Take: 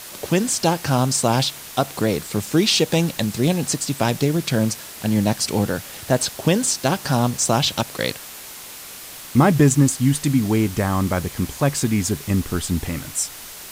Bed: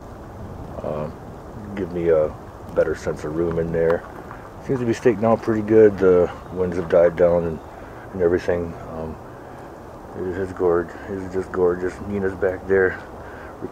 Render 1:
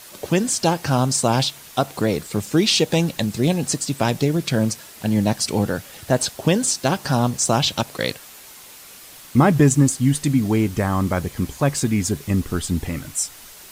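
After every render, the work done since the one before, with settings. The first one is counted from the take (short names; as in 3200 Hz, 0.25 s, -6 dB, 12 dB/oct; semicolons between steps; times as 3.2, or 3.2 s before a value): denoiser 6 dB, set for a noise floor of -37 dBFS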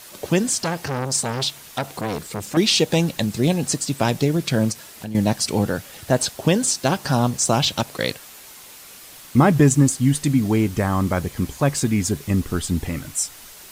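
0.59–2.57 core saturation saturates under 1400 Hz; 4.72–5.15 compressor 5:1, threshold -28 dBFS; 7.54–7.98 overloaded stage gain 11 dB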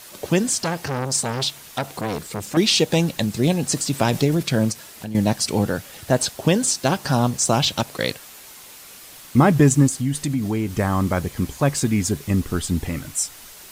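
3.72–4.43 transient shaper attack +1 dB, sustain +5 dB; 9.87–10.79 compressor 2:1, threshold -22 dBFS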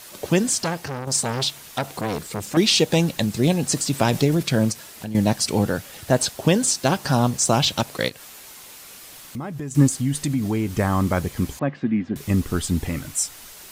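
0.61–1.07 fade out, to -7.5 dB; 8.08–9.75 compressor 2.5:1, threshold -36 dBFS; 11.59–12.16 speaker cabinet 210–2400 Hz, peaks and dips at 230 Hz +4 dB, 420 Hz -9 dB, 640 Hz -4 dB, 950 Hz -9 dB, 1400 Hz -7 dB, 2300 Hz -6 dB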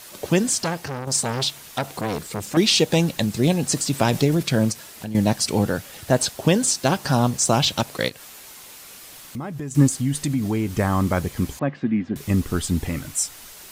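nothing audible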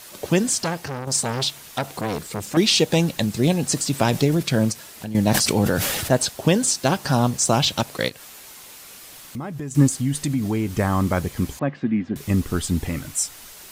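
5.27–6.13 sustainer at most 25 dB/s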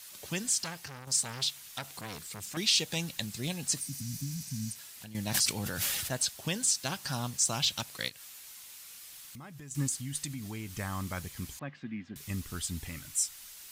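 3.83–4.71 spectral repair 290–8300 Hz after; passive tone stack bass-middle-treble 5-5-5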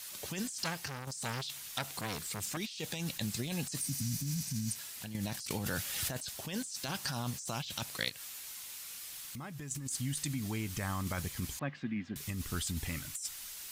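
negative-ratio compressor -37 dBFS, ratio -1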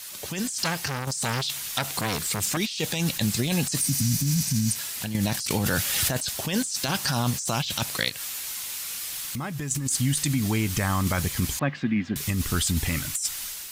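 in parallel at +0.5 dB: limiter -27 dBFS, peak gain reduction 10 dB; on the sum: AGC gain up to 6 dB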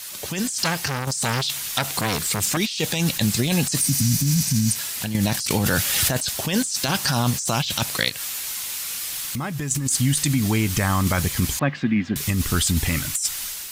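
gain +4 dB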